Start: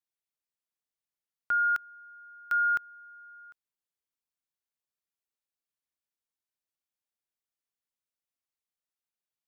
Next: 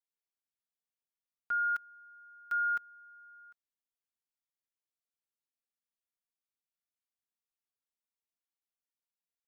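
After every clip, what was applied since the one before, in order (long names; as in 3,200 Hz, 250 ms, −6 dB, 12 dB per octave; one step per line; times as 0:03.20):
comb filter 4.3 ms
level −9 dB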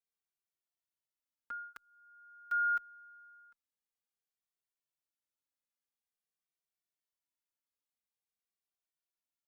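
barber-pole flanger 2.1 ms −0.48 Hz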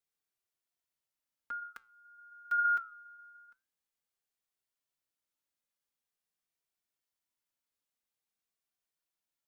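flanger 0.77 Hz, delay 5.8 ms, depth 3.4 ms, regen −85%
level +7 dB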